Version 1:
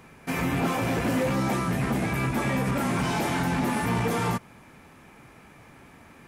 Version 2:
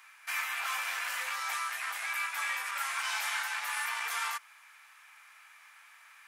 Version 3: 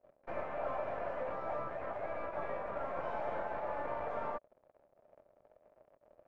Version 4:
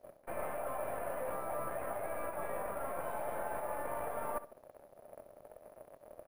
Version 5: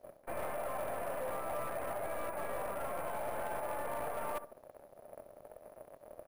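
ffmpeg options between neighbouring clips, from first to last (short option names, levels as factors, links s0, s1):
-af "highpass=f=1200:w=0.5412,highpass=f=1200:w=1.3066"
-af "aeval=exprs='(tanh(35.5*val(0)+0.45)-tanh(0.45))/35.5':c=same,acrusher=bits=7:mix=0:aa=0.5,lowpass=f=600:t=q:w=7.3,volume=1.88"
-af "areverse,acompressor=threshold=0.00501:ratio=10,areverse,acrusher=samples=4:mix=1:aa=0.000001,aecho=1:1:64|128|192:0.188|0.049|0.0127,volume=3.35"
-af "asoftclip=type=hard:threshold=0.0178,volume=1.19"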